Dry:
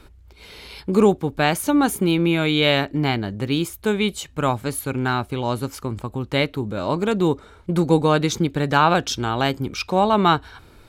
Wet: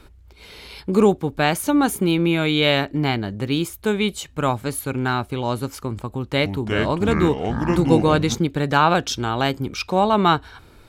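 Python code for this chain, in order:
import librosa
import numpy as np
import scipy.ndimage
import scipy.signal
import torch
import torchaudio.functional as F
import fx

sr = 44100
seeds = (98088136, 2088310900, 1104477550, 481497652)

y = fx.echo_pitch(x, sr, ms=278, semitones=-5, count=3, db_per_echo=-3.0, at=(6.09, 8.35))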